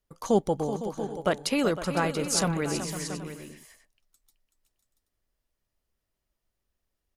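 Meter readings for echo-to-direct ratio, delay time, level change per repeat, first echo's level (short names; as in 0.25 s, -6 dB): -6.5 dB, 0.378 s, no steady repeat, -10.5 dB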